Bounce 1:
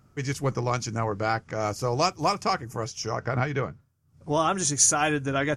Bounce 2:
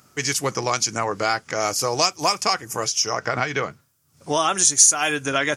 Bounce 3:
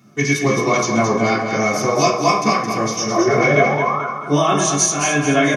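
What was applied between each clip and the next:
HPF 360 Hz 6 dB/oct; high shelf 2600 Hz +12 dB; compressor 2:1, threshold -27 dBFS, peak gain reduction 12 dB; gain +7 dB
painted sound rise, 3.16–4.05, 320–1500 Hz -26 dBFS; feedback echo 0.218 s, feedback 42%, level -6.5 dB; reverb RT60 0.55 s, pre-delay 3 ms, DRR -8 dB; gain -9.5 dB

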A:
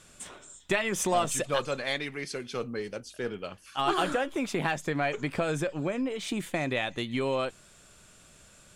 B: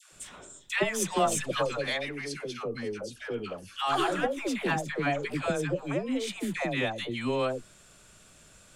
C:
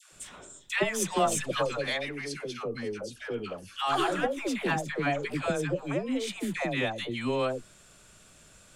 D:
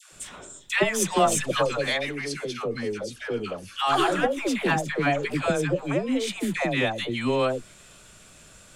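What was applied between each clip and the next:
dispersion lows, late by 0.125 s, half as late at 750 Hz
nothing audible
thin delay 0.53 s, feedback 55%, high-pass 2600 Hz, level -24 dB; gain +5 dB

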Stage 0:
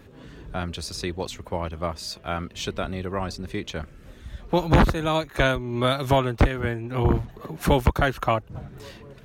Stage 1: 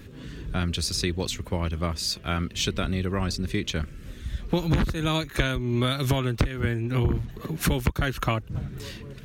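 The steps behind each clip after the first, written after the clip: bell 760 Hz -11.5 dB 1.6 oct; compressor 10:1, threshold -26 dBFS, peak gain reduction 13.5 dB; gain +6.5 dB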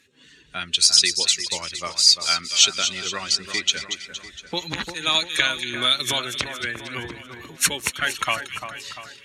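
per-bin expansion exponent 1.5; weighting filter ITU-R 468; split-band echo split 2000 Hz, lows 0.346 s, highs 0.232 s, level -8.5 dB; gain +4.5 dB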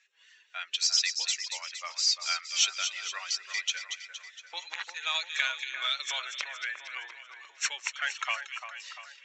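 HPF 680 Hz 24 dB/oct; in parallel at -5 dB: soft clip -17.5 dBFS, distortion -8 dB; on the sum: rippled Chebyshev low-pass 7700 Hz, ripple 6 dB; gain -8.5 dB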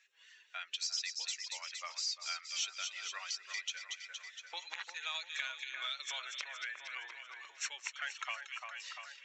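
compressor 2:1, threshold -41 dBFS, peak gain reduction 11.5 dB; gain -1.5 dB

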